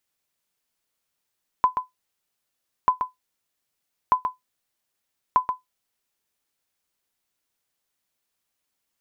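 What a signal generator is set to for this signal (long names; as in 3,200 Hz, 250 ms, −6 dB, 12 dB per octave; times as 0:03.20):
ping with an echo 1,010 Hz, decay 0.15 s, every 1.24 s, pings 4, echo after 0.13 s, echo −7.5 dB −8.5 dBFS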